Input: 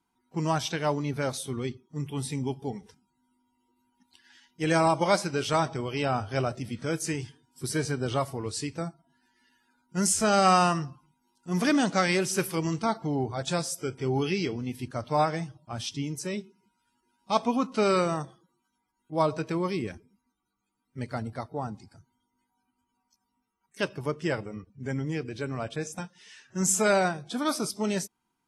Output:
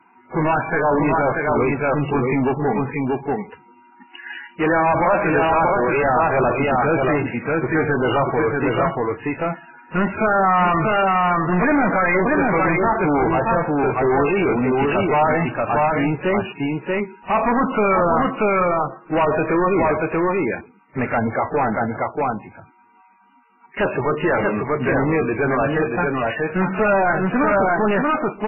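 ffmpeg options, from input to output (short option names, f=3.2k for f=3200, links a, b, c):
-filter_complex "[0:a]asplit=2[a][b];[b]aecho=0:1:634:0.501[c];[a][c]amix=inputs=2:normalize=0,acrossover=split=2900[d][e];[e]acompressor=threshold=-49dB:ratio=4:attack=1:release=60[f];[d][f]amix=inputs=2:normalize=0,asplit=2[g][h];[h]highpass=f=720:p=1,volume=35dB,asoftclip=type=tanh:threshold=-9.5dB[i];[g][i]amix=inputs=2:normalize=0,lowpass=f=2.5k:p=1,volume=-6dB,acrusher=bits=5:mode=log:mix=0:aa=0.000001" -ar 11025 -c:a libmp3lame -b:a 8k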